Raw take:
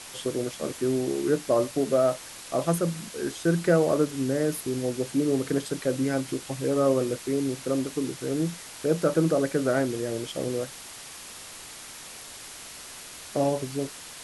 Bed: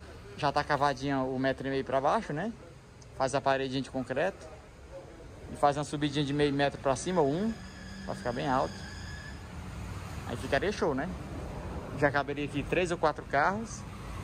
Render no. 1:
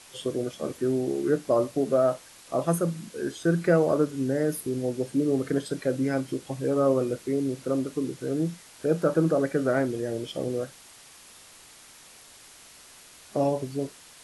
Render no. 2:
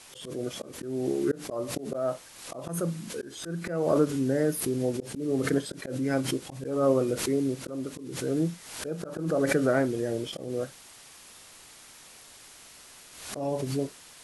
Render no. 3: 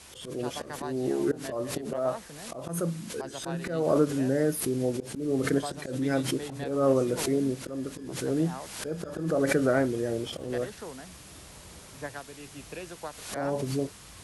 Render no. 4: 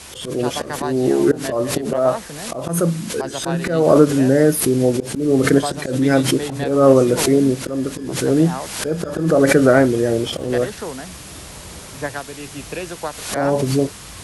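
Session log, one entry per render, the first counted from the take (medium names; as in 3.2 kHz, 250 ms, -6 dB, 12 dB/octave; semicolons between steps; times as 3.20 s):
noise print and reduce 8 dB
slow attack 258 ms; swell ahead of each attack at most 63 dB/s
add bed -12 dB
trim +12 dB; peak limiter -1 dBFS, peak gain reduction 2 dB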